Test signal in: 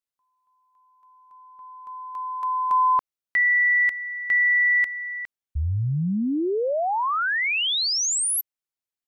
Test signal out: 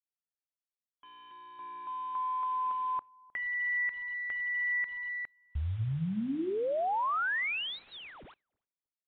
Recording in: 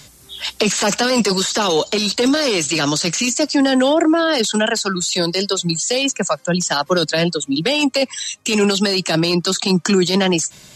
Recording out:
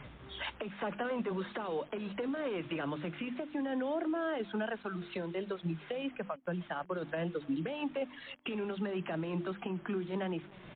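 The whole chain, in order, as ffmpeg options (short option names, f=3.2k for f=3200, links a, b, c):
-filter_complex "[0:a]lowpass=1.9k,bandreject=f=50:t=h:w=6,bandreject=f=100:t=h:w=6,bandreject=f=150:t=h:w=6,bandreject=f=200:t=h:w=6,bandreject=f=250:t=h:w=6,bandreject=f=300:t=h:w=6,bandreject=f=350:t=h:w=6,acompressor=threshold=-27dB:ratio=20:attack=15:release=712:knee=6:detection=peak,alimiter=level_in=2dB:limit=-24dB:level=0:latency=1:release=434,volume=-2dB,acrusher=bits=8:mix=0:aa=0.000001,asplit=2[a][b];[b]adelay=309,lowpass=f=1k:p=1,volume=-22.5dB,asplit=2[c][d];[d]adelay=309,lowpass=f=1k:p=1,volume=0.2[e];[a][c][e]amix=inputs=3:normalize=0,acrusher=samples=5:mix=1:aa=0.000001" -ar 8000 -c:a libmp3lame -b:a 40k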